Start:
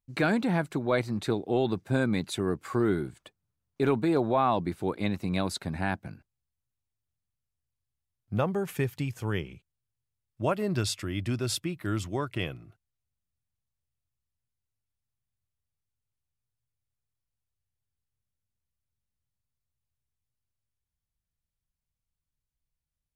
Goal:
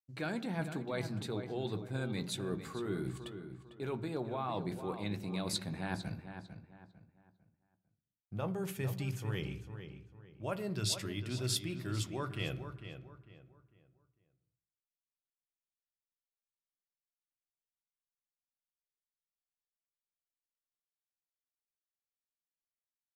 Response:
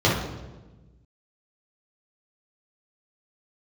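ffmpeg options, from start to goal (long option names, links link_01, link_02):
-filter_complex "[0:a]agate=range=-33dB:threshold=-48dB:ratio=3:detection=peak,areverse,acompressor=threshold=-35dB:ratio=6,areverse,asplit=2[link_01][link_02];[link_02]adelay=16,volume=-13.5dB[link_03];[link_01][link_03]amix=inputs=2:normalize=0,asplit=2[link_04][link_05];[link_05]adelay=450,lowpass=frequency=3600:poles=1,volume=-9.5dB,asplit=2[link_06][link_07];[link_07]adelay=450,lowpass=frequency=3600:poles=1,volume=0.33,asplit=2[link_08][link_09];[link_09]adelay=450,lowpass=frequency=3600:poles=1,volume=0.33,asplit=2[link_10][link_11];[link_11]adelay=450,lowpass=frequency=3600:poles=1,volume=0.33[link_12];[link_04][link_06][link_08][link_10][link_12]amix=inputs=5:normalize=0,asplit=2[link_13][link_14];[1:a]atrim=start_sample=2205,afade=type=out:start_time=0.31:duration=0.01,atrim=end_sample=14112[link_15];[link_14][link_15]afir=irnorm=-1:irlink=0,volume=-31dB[link_16];[link_13][link_16]amix=inputs=2:normalize=0,adynamicequalizer=threshold=0.00158:dfrequency=2100:dqfactor=0.7:tfrequency=2100:tqfactor=0.7:attack=5:release=100:ratio=0.375:range=2.5:mode=boostabove:tftype=highshelf,volume=-1.5dB"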